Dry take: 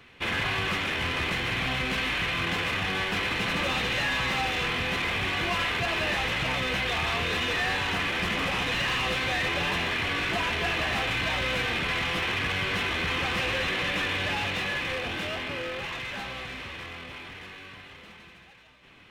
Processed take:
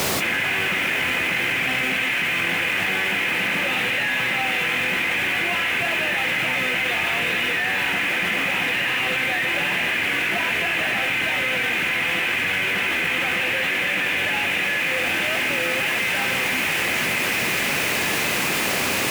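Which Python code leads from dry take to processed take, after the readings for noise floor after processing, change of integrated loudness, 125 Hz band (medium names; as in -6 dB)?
-23 dBFS, +6.5 dB, -1.5 dB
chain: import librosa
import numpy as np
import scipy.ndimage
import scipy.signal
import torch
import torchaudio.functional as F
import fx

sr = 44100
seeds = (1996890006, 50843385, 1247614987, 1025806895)

y = fx.lowpass_res(x, sr, hz=2400.0, q=1.9)
y = fx.peak_eq(y, sr, hz=1100.0, db=-9.5, octaves=0.23)
y = fx.notch(y, sr, hz=430.0, q=12.0)
y = fx.echo_wet_highpass(y, sr, ms=1116, feedback_pct=70, hz=1600.0, wet_db=-10.0)
y = fx.dmg_noise_colour(y, sr, seeds[0], colour='pink', level_db=-37.0)
y = scipy.signal.sosfilt(scipy.signal.butter(2, 170.0, 'highpass', fs=sr, output='sos'), y)
y = fx.env_flatten(y, sr, amount_pct=100)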